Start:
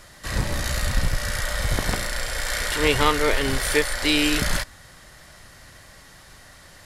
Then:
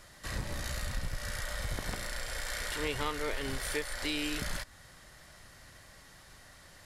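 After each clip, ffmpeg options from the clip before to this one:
-af "acompressor=threshold=0.0398:ratio=2,volume=0.422"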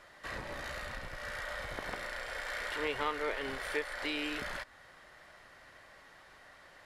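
-af "bass=f=250:g=-14,treble=f=4000:g=-15,volume=1.26"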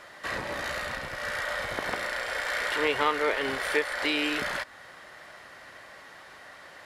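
-af "highpass=f=140:p=1,volume=2.82"

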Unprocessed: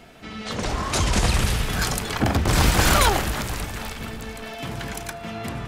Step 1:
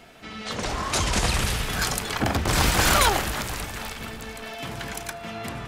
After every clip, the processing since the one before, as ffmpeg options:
-af "lowshelf=f=410:g=-5"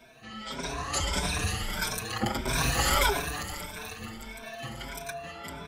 -filter_complex "[0:a]afftfilt=real='re*pow(10,13/40*sin(2*PI*(1.6*log(max(b,1)*sr/1024/100)/log(2)-(1.6)*(pts-256)/sr)))':imag='im*pow(10,13/40*sin(2*PI*(1.6*log(max(b,1)*sr/1024/100)/log(2)-(1.6)*(pts-256)/sr)))':win_size=1024:overlap=0.75,asplit=2[s0][s1];[s1]adelay=5.9,afreqshift=0.46[s2];[s0][s2]amix=inputs=2:normalize=1,volume=0.596"

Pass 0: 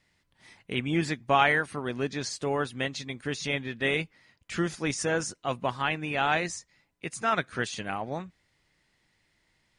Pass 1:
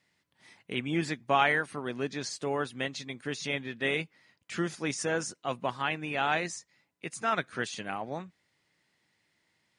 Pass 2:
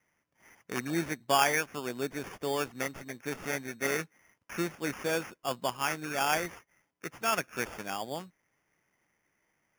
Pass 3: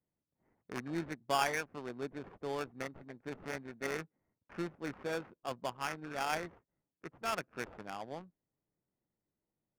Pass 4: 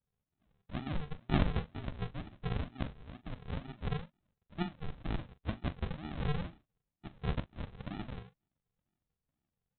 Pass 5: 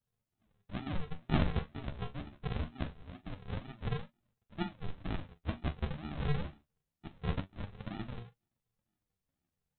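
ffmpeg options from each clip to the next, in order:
-af "highpass=130,volume=0.75"
-af "bass=f=250:g=-4,treble=f=4000:g=-9,acrusher=samples=11:mix=1:aa=0.000001"
-af "adynamicsmooth=sensitivity=5:basefreq=530,volume=0.501"
-filter_complex "[0:a]aresample=8000,acrusher=samples=21:mix=1:aa=0.000001:lfo=1:lforange=12.6:lforate=2.1,aresample=44100,asplit=2[s0][s1];[s1]adelay=42,volume=0.2[s2];[s0][s2]amix=inputs=2:normalize=0,volume=1.33"
-af "flanger=delay=8.5:depth=5.5:regen=46:speed=0.24:shape=sinusoidal,volume=1.58"

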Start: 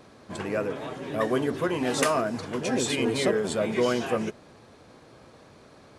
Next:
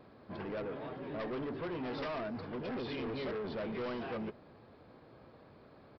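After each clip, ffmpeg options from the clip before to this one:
-af "highshelf=f=2700:g=-11,aresample=11025,asoftclip=type=tanh:threshold=0.0299,aresample=44100,volume=0.562"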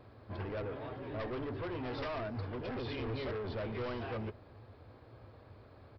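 -af "lowshelf=f=130:t=q:w=3:g=6.5"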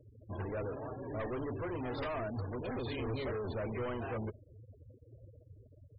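-af "afftfilt=real='re*gte(hypot(re,im),0.00631)':imag='im*gte(hypot(re,im),0.00631)':win_size=1024:overlap=0.75,volume=1.12"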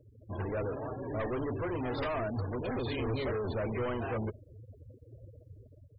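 -af "dynaudnorm=f=120:g=5:m=1.58"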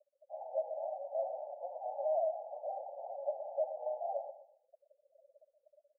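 -filter_complex "[0:a]asuperpass=centerf=680:order=12:qfactor=2.4,asplit=2[s0][s1];[s1]aecho=0:1:122|244|366:0.251|0.0728|0.0211[s2];[s0][s2]amix=inputs=2:normalize=0,volume=1.58"

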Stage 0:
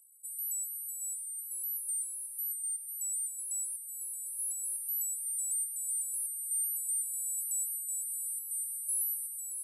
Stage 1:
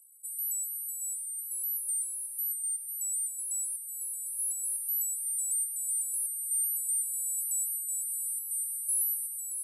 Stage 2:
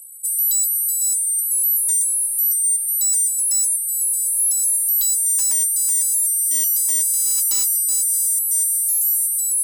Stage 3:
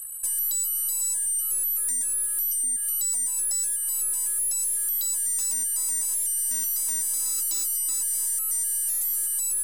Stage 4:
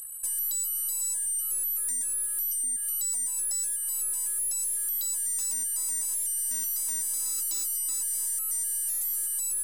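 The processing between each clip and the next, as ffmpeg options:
-af "equalizer=f=11000:w=0.46:g=8,volume=0.596"
-af "aeval=exprs='0.1*sin(PI/2*3.16*val(0)/0.1)':c=same,volume=1.68"
-filter_complex "[0:a]acrossover=split=3000|6100[s0][s1][s2];[s0]acompressor=threshold=0.00158:ratio=4[s3];[s1]acompressor=threshold=0.01:ratio=4[s4];[s2]acompressor=threshold=0.0355:ratio=4[s5];[s3][s4][s5]amix=inputs=3:normalize=0,aeval=exprs='0.141*(cos(1*acos(clip(val(0)/0.141,-1,1)))-cos(1*PI/2))+0.0126*(cos(5*acos(clip(val(0)/0.141,-1,1)))-cos(5*PI/2))+0.00562*(cos(6*acos(clip(val(0)/0.141,-1,1)))-cos(6*PI/2))':c=same"
-af "acompressor=mode=upward:threshold=0.00562:ratio=2.5,volume=0.668"

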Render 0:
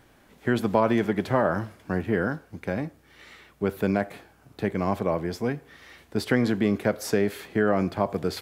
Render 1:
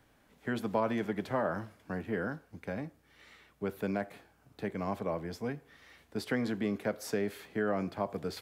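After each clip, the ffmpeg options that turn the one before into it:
-filter_complex "[0:a]bandreject=f=360:w=12,acrossover=split=150|6400[s0][s1][s2];[s0]alimiter=level_in=2.99:limit=0.0631:level=0:latency=1:release=362,volume=0.335[s3];[s3][s1][s2]amix=inputs=3:normalize=0,volume=0.376"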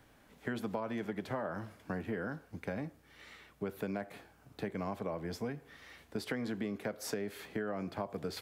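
-af "acompressor=threshold=0.0141:ratio=6,volume=1.41"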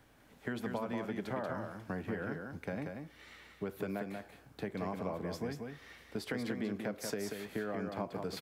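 -af "aecho=1:1:186:0.562,volume=0.891"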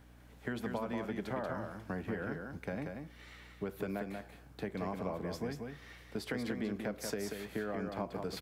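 -af "aeval=exprs='val(0)+0.00126*(sin(2*PI*60*n/s)+sin(2*PI*2*60*n/s)/2+sin(2*PI*3*60*n/s)/3+sin(2*PI*4*60*n/s)/4+sin(2*PI*5*60*n/s)/5)':c=same"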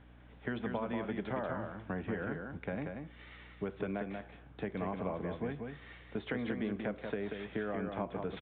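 -af "aresample=8000,aresample=44100,volume=1.12"

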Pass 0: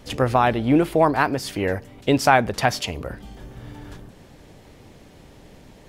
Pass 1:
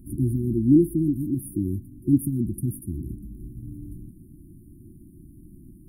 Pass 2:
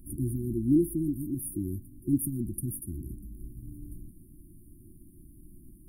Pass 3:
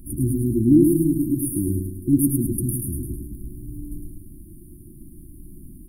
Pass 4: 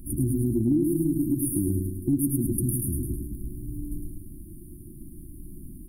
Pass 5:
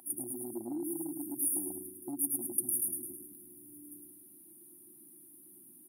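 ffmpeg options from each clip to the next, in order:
-af "afftfilt=real='re*(1-between(b*sr/4096,370,9200))':imag='im*(1-between(b*sr/4096,370,9200))':win_size=4096:overlap=0.75,volume=1.19"
-af "equalizer=f=170:w=0.3:g=-11,volume=1.41"
-af "aecho=1:1:106|212|318|424|530|636:0.631|0.297|0.139|0.0655|0.0308|0.0145,volume=2.51"
-af "acompressor=threshold=0.0891:ratio=4"
-af "highpass=f=770:t=q:w=4.7"

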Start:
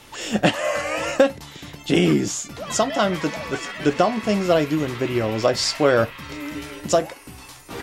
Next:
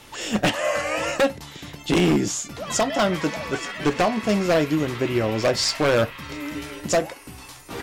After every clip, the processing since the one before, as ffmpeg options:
-af "aeval=exprs='0.237*(abs(mod(val(0)/0.237+3,4)-2)-1)':c=same"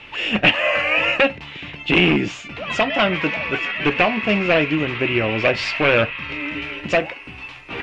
-af "lowpass=f=2600:t=q:w=4.9,volume=1.12"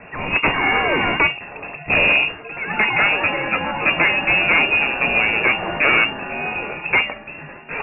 -af "aeval=exprs='0.891*(cos(1*acos(clip(val(0)/0.891,-1,1)))-cos(1*PI/2))+0.112*(cos(6*acos(clip(val(0)/0.891,-1,1)))-cos(6*PI/2))':c=same,apsyclip=3.55,lowpass=f=2400:t=q:w=0.5098,lowpass=f=2400:t=q:w=0.6013,lowpass=f=2400:t=q:w=0.9,lowpass=f=2400:t=q:w=2.563,afreqshift=-2800,volume=0.422"

